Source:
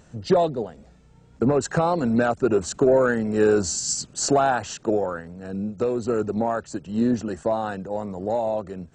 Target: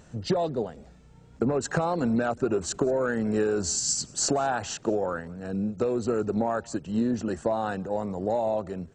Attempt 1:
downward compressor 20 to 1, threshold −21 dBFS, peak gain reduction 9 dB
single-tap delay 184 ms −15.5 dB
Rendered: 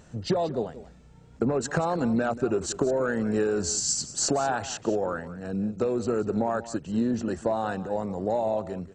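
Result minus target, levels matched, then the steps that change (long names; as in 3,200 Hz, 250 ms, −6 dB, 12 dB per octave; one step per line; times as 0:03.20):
echo-to-direct +11 dB
change: single-tap delay 184 ms −26.5 dB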